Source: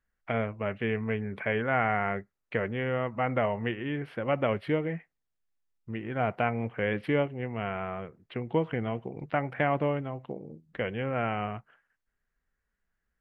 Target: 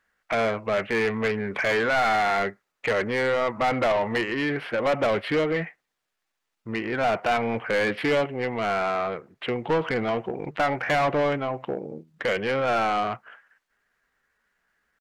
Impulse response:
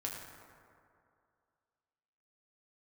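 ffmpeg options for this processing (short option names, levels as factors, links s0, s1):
-filter_complex "[0:a]asplit=2[s0][s1];[s1]highpass=f=720:p=1,volume=15.8,asoftclip=type=tanh:threshold=0.251[s2];[s0][s2]amix=inputs=2:normalize=0,lowpass=f=3700:p=1,volume=0.501,atempo=0.88,volume=0.794"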